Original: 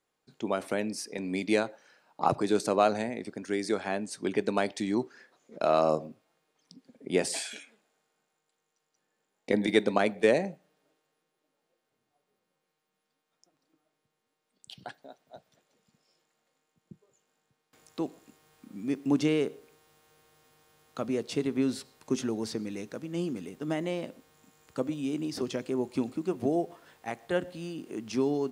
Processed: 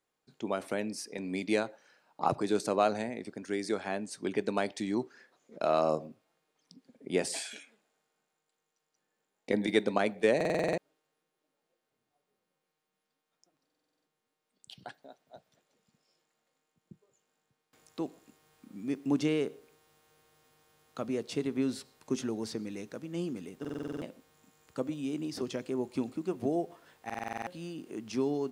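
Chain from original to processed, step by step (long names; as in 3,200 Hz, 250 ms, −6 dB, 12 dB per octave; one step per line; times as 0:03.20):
buffer that repeats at 0:10.36/0:13.65/0:23.60/0:27.05, samples 2,048, times 8
level −3 dB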